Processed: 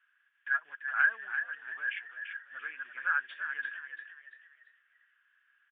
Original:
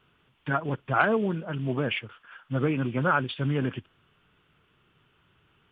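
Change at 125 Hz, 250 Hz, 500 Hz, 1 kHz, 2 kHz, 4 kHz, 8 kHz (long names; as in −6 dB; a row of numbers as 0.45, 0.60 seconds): below −40 dB, below −40 dB, below −30 dB, −10.5 dB, +2.5 dB, −13.5 dB, can't be measured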